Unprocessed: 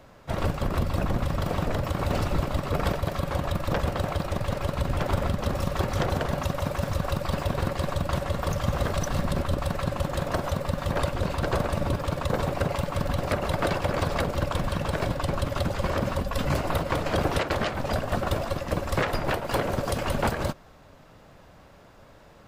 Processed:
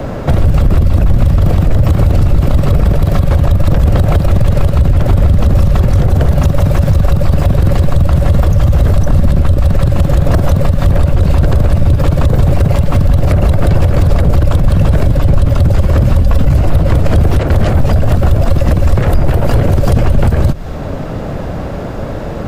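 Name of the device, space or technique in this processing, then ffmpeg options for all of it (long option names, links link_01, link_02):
mastering chain: -filter_complex "[0:a]equalizer=frequency=1000:width_type=o:width=0.5:gain=-3.5,acrossover=split=120|1900|7900[link_01][link_02][link_03][link_04];[link_01]acompressor=threshold=-27dB:ratio=4[link_05];[link_02]acompressor=threshold=-43dB:ratio=4[link_06];[link_03]acompressor=threshold=-49dB:ratio=4[link_07];[link_04]acompressor=threshold=-51dB:ratio=4[link_08];[link_05][link_06][link_07][link_08]amix=inputs=4:normalize=0,acompressor=threshold=-33dB:ratio=3,asoftclip=type=tanh:threshold=-25.5dB,tiltshelf=frequency=1100:gain=7,alimiter=level_in=28dB:limit=-1dB:release=50:level=0:latency=1,volume=-1dB"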